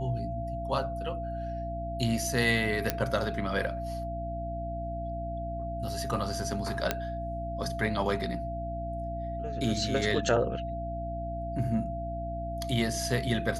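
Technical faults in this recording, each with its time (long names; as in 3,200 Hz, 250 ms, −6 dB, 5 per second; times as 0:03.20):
mains hum 60 Hz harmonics 5 −37 dBFS
whistle 680 Hz −35 dBFS
0:02.90: click −10 dBFS
0:06.91: click −10 dBFS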